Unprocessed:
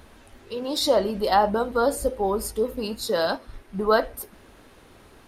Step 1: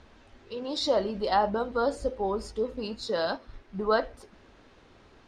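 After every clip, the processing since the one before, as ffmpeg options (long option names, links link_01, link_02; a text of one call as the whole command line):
ffmpeg -i in.wav -af "lowpass=frequency=6400:width=0.5412,lowpass=frequency=6400:width=1.3066,volume=-5dB" out.wav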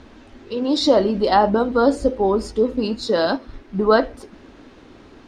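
ffmpeg -i in.wav -af "equalizer=frequency=280:width_type=o:width=0.85:gain=9,volume=8dB" out.wav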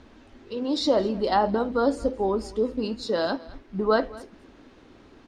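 ffmpeg -i in.wav -af "aecho=1:1:219:0.0944,volume=-6.5dB" out.wav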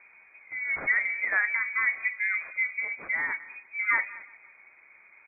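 ffmpeg -i in.wav -af "acrusher=samples=7:mix=1:aa=0.000001,aecho=1:1:176|352|528:0.0708|0.0304|0.0131,lowpass=frequency=2100:width_type=q:width=0.5098,lowpass=frequency=2100:width_type=q:width=0.6013,lowpass=frequency=2100:width_type=q:width=0.9,lowpass=frequency=2100:width_type=q:width=2.563,afreqshift=-2500,volume=-4dB" out.wav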